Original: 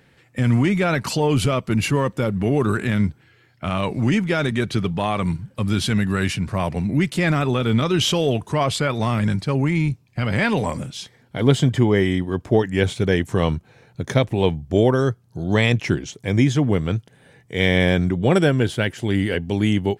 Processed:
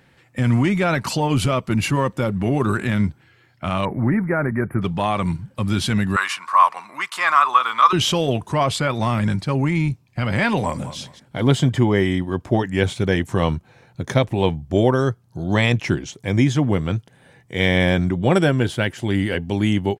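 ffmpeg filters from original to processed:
-filter_complex "[0:a]asettb=1/sr,asplit=3[a][b][c];[a]atrim=end=3.854[d];[b]atrim=start=3.85:end=4.82,asetpts=PTS-STARTPTS,afade=t=in:d=0.004:c=qsin,afade=t=out:st=0.966:d=0.004:c=qsin,asuperstop=centerf=4900:order=12:qfactor=0.58[e];[c]atrim=start=4.816[f];[d][e]acrossfade=d=0.004:c1=hsin:c2=qsin[g];[g][f]acrossfade=d=0.004:c1=qsin:c2=hsin,asettb=1/sr,asplit=3[h][i][j];[h]atrim=end=6.164[k];[i]atrim=start=6.16:end=7.93,asetpts=PTS-STARTPTS,afade=t=in:d=0.004:c=qsin,afade=t=out:st=1.766:d=0.004:c=qsin,highpass=f=1.1k:t=q:w=8.2[l];[j]atrim=start=7.926[m];[k][l]acrossfade=d=0.004:c1=hsin:c2=qsin[n];[n][m]acrossfade=d=0.004:c1=qsin:c2=hsin,asplit=2[o][p];[p]afade=t=in:st=10.58:d=0.01,afade=t=out:st=10.98:d=0.01,aecho=0:1:210|420:0.223872|0.0447744[q];[o][q]amix=inputs=2:normalize=0,equalizer=f=950:w=1.5:g=3,bandreject=f=440:w=12"

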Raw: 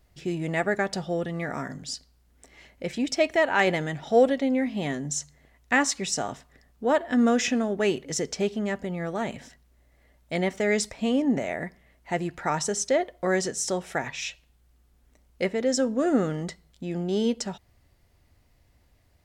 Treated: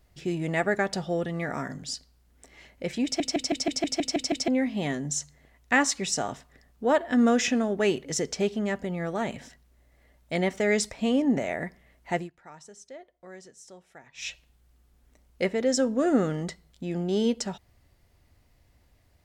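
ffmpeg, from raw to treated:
-filter_complex "[0:a]asplit=12[a][b][c][d][e][f][g][h][i][j][k][l];[a]atrim=end=3.202[m];[b]atrim=start=3.038:end=3.202[n];[c]atrim=start=3.038:end=3.202[o];[d]atrim=start=3.038:end=3.202[p];[e]atrim=start=3.038:end=3.202[q];[f]atrim=start=3.038:end=3.202[r];[g]atrim=start=3.038:end=3.202[s];[h]atrim=start=3.038:end=3.202[t];[i]atrim=start=3.038:end=3.202[u];[j]atrim=start=4.478:end=12.3,asetpts=PTS-STARTPTS,afade=t=out:st=7.672:d=0.15:silence=0.0891251[v];[k]atrim=start=12.3:end=14.14,asetpts=PTS-STARTPTS,volume=-21dB[w];[l]atrim=start=14.14,asetpts=PTS-STARTPTS,afade=t=in:d=0.15:silence=0.0891251[x];[m][n]acrossfade=d=0.004:c1=hsin:c2=hsin[y];[y][o]acrossfade=d=0.004:c1=hsin:c2=hsin[z];[z][p]acrossfade=d=0.004:c1=hsin:c2=hsin[aa];[aa][q]acrossfade=d=0.004:c1=hsin:c2=hsin[ab];[ab][r]acrossfade=d=0.004:c1=hsin:c2=hsin[ac];[ac][s]acrossfade=d=0.004:c1=hsin:c2=hsin[ad];[ad][t]acrossfade=d=0.004:c1=hsin:c2=hsin[ae];[ae][u]acrossfade=d=0.004:c1=hsin:c2=hsin[af];[v][w][x]concat=n=3:v=0:a=1[ag];[af][ag]acrossfade=d=0.004:c1=hsin:c2=hsin"

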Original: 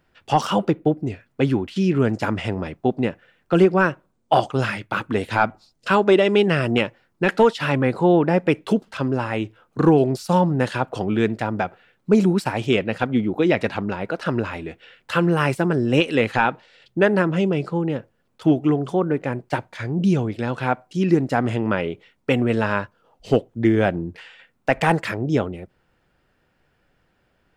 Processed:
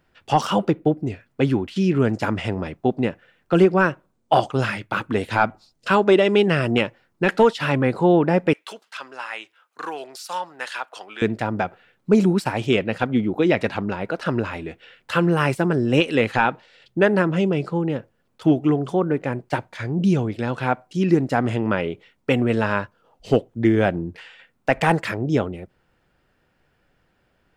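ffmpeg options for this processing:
-filter_complex "[0:a]asettb=1/sr,asplit=3[a][b][c];[a]atrim=end=8.534[d];[b]atrim=start=8.53:end=11.22,asetpts=PTS-STARTPTS,afade=t=in:d=0.004:c=qsin,afade=t=out:st=2.686:d=0.004:c=qsin,highpass=1.2k[e];[c]atrim=start=11.216[f];[d][e]acrossfade=d=0.004:c1=hsin:c2=qsin[g];[g][f]acrossfade=d=0.004:c1=qsin:c2=hsin"

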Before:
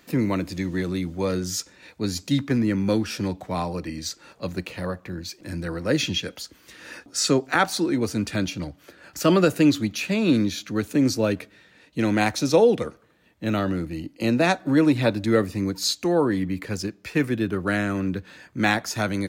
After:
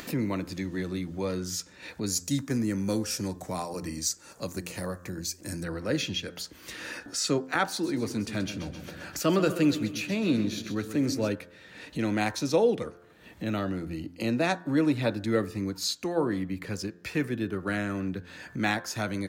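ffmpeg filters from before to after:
-filter_complex "[0:a]asettb=1/sr,asplit=3[a][b][c];[a]atrim=end=2.064[d];[b]atrim=start=2.06:end=5.64,asetpts=PTS-STARTPTS,afade=t=in:d=0.004:c=qsin,afade=t=out:st=3.576:d=0.004:c=qsin,highshelf=f=4.9k:t=q:w=1.5:g=10.5[e];[c]atrim=start=5.636[f];[d][e]acrossfade=d=0.004:c1=hsin:c2=qsin[g];[g][f]acrossfade=d=0.004:c1=qsin:c2=hsin,asettb=1/sr,asplit=3[h][i][j];[h]atrim=end=7.704[k];[i]atrim=start=7.7:end=11.29,asetpts=PTS-STARTPTS,afade=t=in:d=0.004:c=qsin,afade=t=out:st=3.586:d=0.004:c=qsin,aecho=1:1:131|262|393|524|655:0.251|0.128|0.0653|0.0333|0.017,atrim=end_sample=158319[l];[j]atrim=start=11.286[m];[k][l]acrossfade=d=0.004:c1=hsin:c2=qsin[n];[n][m]acrossfade=d=0.004:c1=qsin:c2=hsin,bandreject=f=87.41:t=h:w=4,bandreject=f=174.82:t=h:w=4,bandreject=f=262.23:t=h:w=4,bandreject=f=349.64:t=h:w=4,bandreject=f=437.05:t=h:w=4,bandreject=f=524.46:t=h:w=4,bandreject=f=611.87:t=h:w=4,bandreject=f=699.28:t=h:w=4,bandreject=f=786.69:t=h:w=4,bandreject=f=874.1:t=h:w=4,bandreject=f=961.51:t=h:w=4,bandreject=f=1.04892k:t=h:w=4,bandreject=f=1.13633k:t=h:w=4,bandreject=f=1.22374k:t=h:w=4,bandreject=f=1.31115k:t=h:w=4,bandreject=f=1.39856k:t=h:w=4,bandreject=f=1.48597k:t=h:w=4,bandreject=f=1.57338k:t=h:w=4,bandreject=f=1.66079k:t=h:w=4,bandreject=f=1.7482k:t=h:w=4,bandreject=f=1.83561k:t=h:w=4,acompressor=mode=upward:threshold=-23dB:ratio=2.5,volume=-6dB"

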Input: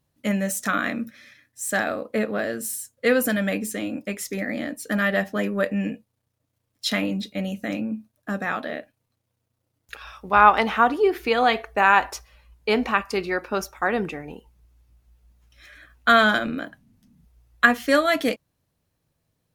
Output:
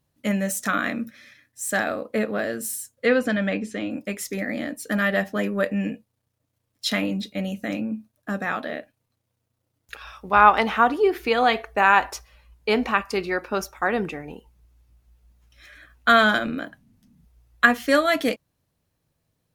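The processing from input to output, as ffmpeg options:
-filter_complex "[0:a]asettb=1/sr,asplit=3[a][b][c];[a]atrim=end=3.064[d];[b]atrim=start=3.06:end=3.91,asetpts=PTS-STARTPTS,afade=t=in:d=0.004:c=qsin,afade=t=out:st=0.846:d=0.004:c=qsin,lowpass=4.3k[e];[c]atrim=start=3.906[f];[d][e]acrossfade=d=0.004:c1=hsin:c2=qsin[g];[g][f]acrossfade=d=0.004:c1=qsin:c2=hsin"

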